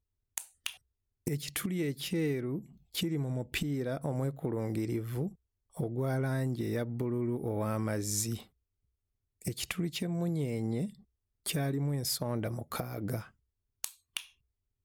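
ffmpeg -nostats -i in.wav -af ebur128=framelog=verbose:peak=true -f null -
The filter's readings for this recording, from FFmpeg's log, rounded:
Integrated loudness:
  I:         -34.8 LUFS
  Threshold: -45.1 LUFS
Loudness range:
  LRA:         2.2 LU
  Threshold: -54.9 LUFS
  LRA low:   -36.0 LUFS
  LRA high:  -33.9 LUFS
True peak:
  Peak:      -17.2 dBFS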